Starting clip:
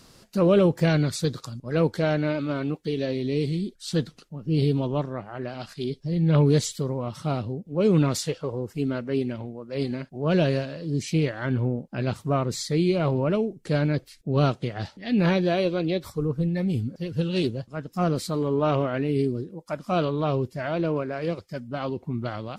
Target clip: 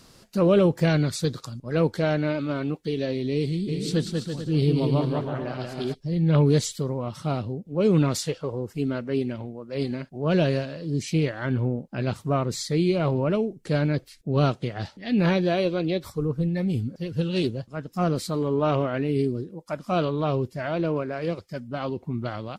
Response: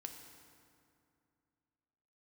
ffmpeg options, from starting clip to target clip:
-filter_complex "[0:a]asplit=3[a][b][c];[a]afade=t=out:st=3.67:d=0.02[d];[b]aecho=1:1:190|332.5|439.4|519.5|579.6:0.631|0.398|0.251|0.158|0.1,afade=t=in:st=3.67:d=0.02,afade=t=out:st=5.93:d=0.02[e];[c]afade=t=in:st=5.93:d=0.02[f];[d][e][f]amix=inputs=3:normalize=0"

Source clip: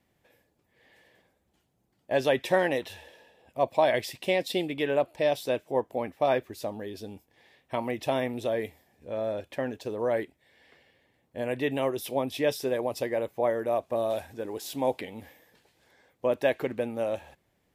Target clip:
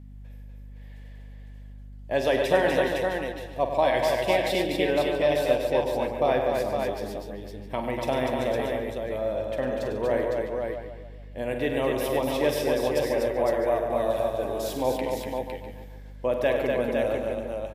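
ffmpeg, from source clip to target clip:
-filter_complex "[0:a]asplit=2[a][b];[b]aecho=0:1:47|100|244|508|660:0.316|0.355|0.596|0.596|0.133[c];[a][c]amix=inputs=2:normalize=0,aeval=exprs='val(0)+0.00708*(sin(2*PI*50*n/s)+sin(2*PI*2*50*n/s)/2+sin(2*PI*3*50*n/s)/3+sin(2*PI*4*50*n/s)/4+sin(2*PI*5*50*n/s)/5)':c=same,asplit=2[d][e];[e]adelay=142,lowpass=f=2.7k:p=1,volume=-8dB,asplit=2[f][g];[g]adelay=142,lowpass=f=2.7k:p=1,volume=0.51,asplit=2[h][i];[i]adelay=142,lowpass=f=2.7k:p=1,volume=0.51,asplit=2[j][k];[k]adelay=142,lowpass=f=2.7k:p=1,volume=0.51,asplit=2[l][m];[m]adelay=142,lowpass=f=2.7k:p=1,volume=0.51,asplit=2[n][o];[o]adelay=142,lowpass=f=2.7k:p=1,volume=0.51[p];[f][h][j][l][n][p]amix=inputs=6:normalize=0[q];[d][q]amix=inputs=2:normalize=0"

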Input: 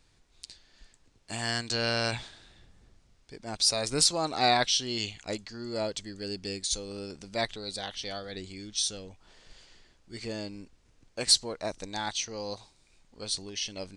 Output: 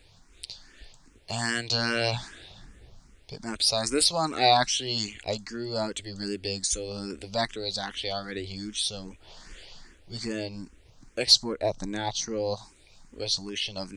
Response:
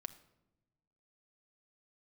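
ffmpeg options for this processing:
-filter_complex "[0:a]asettb=1/sr,asplit=3[a][b][c];[a]atrim=end=11.424[d];[b]atrim=start=11.42:end=12.55,asetpts=PTS-STARTPTS,afade=t=in:d=0.004:c=qsin,afade=t=out:st=1.126:d=0.004:c=qsin,tiltshelf=f=1.1k:g=4.5[e];[c]atrim=start=12.546[f];[d][e]acrossfade=d=0.004:c1=hsin:c2=qsin[g];[g][f]acrossfade=d=0.004:c1=qsin:c2=hsin,asplit=2[h][i];[i]acompressor=threshold=-43dB:ratio=6,volume=2dB[j];[h][j]amix=inputs=2:normalize=0,asplit=2[k][l];[l]afreqshift=2.5[m];[k][m]amix=inputs=2:normalize=1,volume=4dB"

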